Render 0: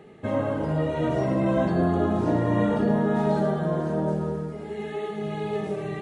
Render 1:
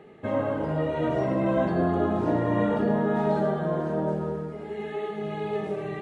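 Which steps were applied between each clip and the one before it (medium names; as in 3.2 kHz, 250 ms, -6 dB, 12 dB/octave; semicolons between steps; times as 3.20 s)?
tone controls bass -4 dB, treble -8 dB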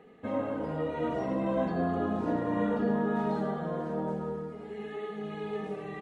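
comb 4.1 ms, depth 54%; trim -6 dB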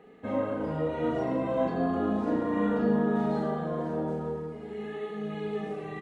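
doubling 38 ms -4 dB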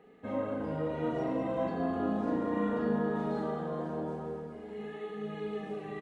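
feedback delay 202 ms, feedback 55%, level -9 dB; trim -4.5 dB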